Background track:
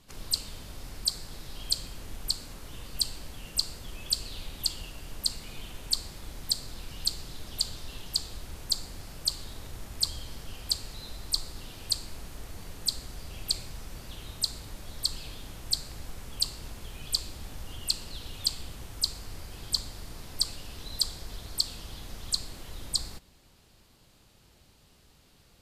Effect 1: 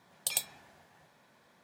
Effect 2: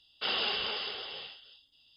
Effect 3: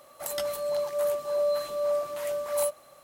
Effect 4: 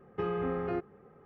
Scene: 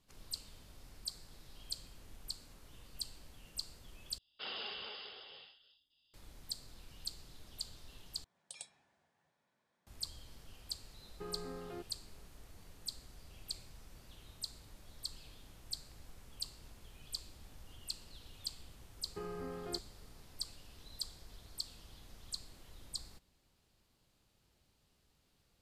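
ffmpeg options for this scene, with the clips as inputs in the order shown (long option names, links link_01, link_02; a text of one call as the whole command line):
ffmpeg -i bed.wav -i cue0.wav -i cue1.wav -i cue2.wav -i cue3.wav -filter_complex "[4:a]asplit=2[link_01][link_02];[0:a]volume=-14dB[link_03];[1:a]aresample=22050,aresample=44100[link_04];[link_03]asplit=3[link_05][link_06][link_07];[link_05]atrim=end=4.184[link_08];[2:a]atrim=end=1.96,asetpts=PTS-STARTPTS,volume=-12dB[link_09];[link_06]atrim=start=6.136:end=8.244[link_10];[link_04]atrim=end=1.63,asetpts=PTS-STARTPTS,volume=-17.5dB[link_11];[link_07]atrim=start=9.866[link_12];[link_01]atrim=end=1.25,asetpts=PTS-STARTPTS,volume=-13.5dB,afade=type=in:duration=0.004:curve=hsin,afade=type=out:start_time=1.246:duration=0.004:curve=hsin,adelay=11020[link_13];[link_02]atrim=end=1.25,asetpts=PTS-STARTPTS,volume=-11.5dB,afade=type=in:duration=0.004:curve=hsin,afade=type=out:start_time=1.246:duration=0.004:curve=hsin,adelay=18980[link_14];[link_08][link_09]acrossfade=duration=0.004:curve1=hsin:curve2=hsin[link_15];[link_15][link_10]acrossfade=duration=0.004:curve1=hsin:curve2=hsin[link_16];[link_16][link_11]acrossfade=duration=0.004:curve1=hsin:curve2=hsin[link_17];[link_17][link_12]acrossfade=duration=0.004:curve1=hsin:curve2=hsin[link_18];[link_18][link_13][link_14]amix=inputs=3:normalize=0" out.wav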